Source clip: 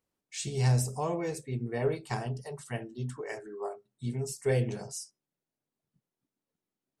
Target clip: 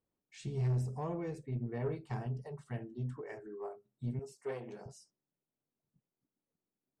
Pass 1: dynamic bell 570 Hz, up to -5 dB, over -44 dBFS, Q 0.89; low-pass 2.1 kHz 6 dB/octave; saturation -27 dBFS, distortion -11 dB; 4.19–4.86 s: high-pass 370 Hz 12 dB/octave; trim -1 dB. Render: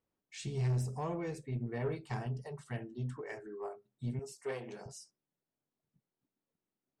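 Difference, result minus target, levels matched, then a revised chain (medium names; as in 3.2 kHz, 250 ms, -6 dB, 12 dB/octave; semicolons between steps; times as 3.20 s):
2 kHz band +4.5 dB
dynamic bell 570 Hz, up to -5 dB, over -44 dBFS, Q 0.89; low-pass 850 Hz 6 dB/octave; saturation -27 dBFS, distortion -12 dB; 4.19–4.86 s: high-pass 370 Hz 12 dB/octave; trim -1 dB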